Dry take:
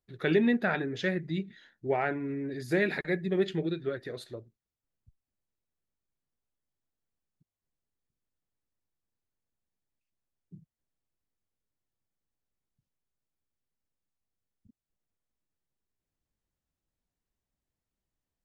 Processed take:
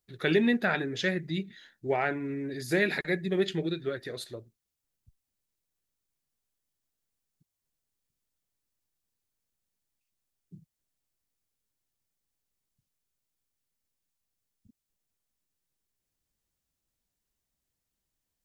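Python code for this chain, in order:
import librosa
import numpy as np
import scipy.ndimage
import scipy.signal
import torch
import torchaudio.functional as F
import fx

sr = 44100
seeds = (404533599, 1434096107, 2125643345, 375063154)

y = fx.high_shelf(x, sr, hz=3000.0, db=9.5)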